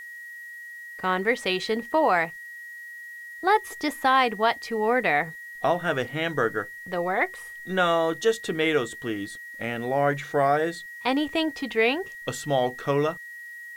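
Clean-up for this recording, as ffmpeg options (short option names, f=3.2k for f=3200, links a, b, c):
-af "bandreject=f=1.9k:w=30,agate=range=-21dB:threshold=-33dB"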